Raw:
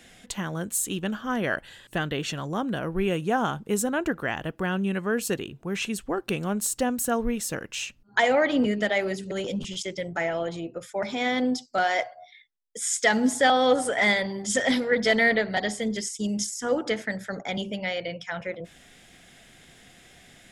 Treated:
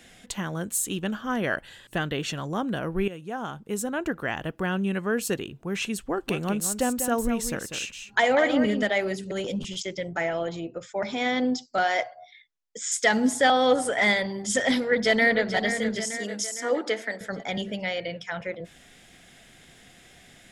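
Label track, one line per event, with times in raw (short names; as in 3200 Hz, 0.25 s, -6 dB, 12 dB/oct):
3.080000	4.400000	fade in, from -14 dB
6.010000	8.830000	echo 0.195 s -8.5 dB
9.800000	12.920000	steep low-pass 7600 Hz 72 dB/oct
14.750000	15.530000	echo throw 0.46 s, feedback 55%, level -8.5 dB
16.180000	17.210000	HPF 270 Hz 24 dB/oct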